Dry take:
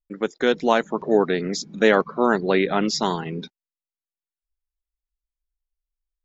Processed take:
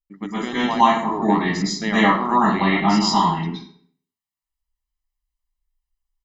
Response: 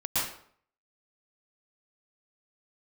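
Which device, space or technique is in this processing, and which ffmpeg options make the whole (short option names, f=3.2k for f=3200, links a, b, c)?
microphone above a desk: -filter_complex "[0:a]aecho=1:1:1:0.82[a];[1:a]atrim=start_sample=2205[b];[a][b]afir=irnorm=-1:irlink=0,volume=-7dB"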